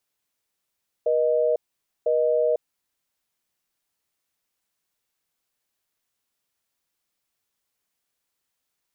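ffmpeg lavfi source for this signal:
-f lavfi -i "aevalsrc='0.0891*(sin(2*PI*480*t)+sin(2*PI*620*t))*clip(min(mod(t,1),0.5-mod(t,1))/0.005,0,1)':d=1.79:s=44100"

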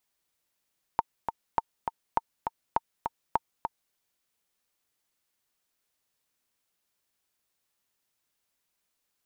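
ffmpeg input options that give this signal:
-f lavfi -i "aevalsrc='pow(10,(-10-6*gte(mod(t,2*60/203),60/203))/20)*sin(2*PI*912*mod(t,60/203))*exp(-6.91*mod(t,60/203)/0.03)':d=2.95:s=44100"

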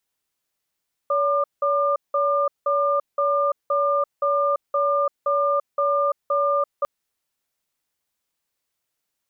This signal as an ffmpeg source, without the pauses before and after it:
-f lavfi -i "aevalsrc='0.0944*(sin(2*PI*569*t)+sin(2*PI*1200*t))*clip(min(mod(t,0.52),0.34-mod(t,0.52))/0.005,0,1)':d=5.75:s=44100"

